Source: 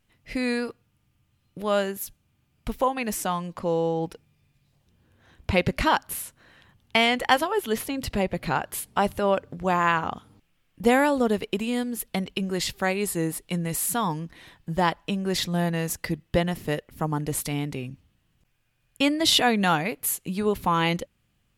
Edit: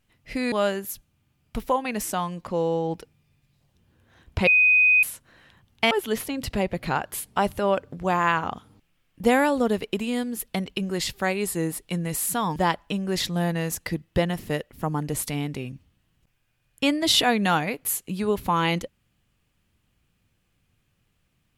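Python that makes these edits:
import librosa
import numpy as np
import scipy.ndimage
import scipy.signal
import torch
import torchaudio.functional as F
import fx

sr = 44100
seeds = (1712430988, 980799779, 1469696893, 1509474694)

y = fx.edit(x, sr, fx.cut(start_s=0.52, length_s=1.12),
    fx.bleep(start_s=5.59, length_s=0.56, hz=2500.0, db=-14.0),
    fx.cut(start_s=7.03, length_s=0.48),
    fx.cut(start_s=14.16, length_s=0.58), tone=tone)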